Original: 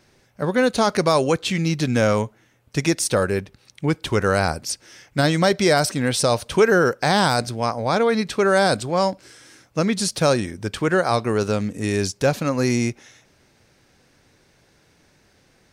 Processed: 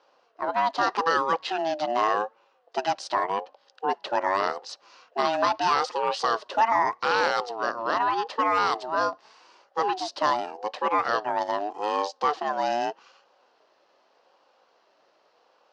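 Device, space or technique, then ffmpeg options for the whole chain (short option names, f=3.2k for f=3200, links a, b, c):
voice changer toy: -af "aeval=exprs='val(0)*sin(2*PI*570*n/s+570*0.2/0.83*sin(2*PI*0.83*n/s))':c=same,highpass=510,equalizer=f=520:t=q:w=4:g=5,equalizer=f=2.2k:t=q:w=4:g=-10,equalizer=f=3.5k:t=q:w=4:g=-5,lowpass=f=4.5k:w=0.5412,lowpass=f=4.5k:w=1.3066"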